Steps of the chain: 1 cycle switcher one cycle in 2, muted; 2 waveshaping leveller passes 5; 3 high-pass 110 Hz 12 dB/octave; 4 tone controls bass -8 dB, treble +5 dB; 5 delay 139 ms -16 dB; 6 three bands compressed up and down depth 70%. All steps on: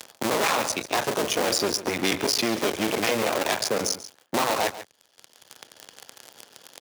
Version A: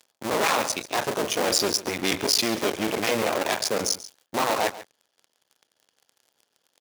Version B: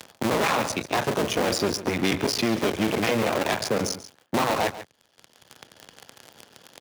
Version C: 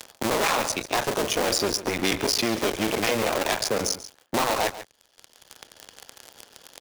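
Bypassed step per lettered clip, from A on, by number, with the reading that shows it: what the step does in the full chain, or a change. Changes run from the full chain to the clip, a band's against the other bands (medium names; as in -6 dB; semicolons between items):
6, momentary loudness spread change +2 LU; 4, 125 Hz band +7.0 dB; 3, 125 Hz band +2.0 dB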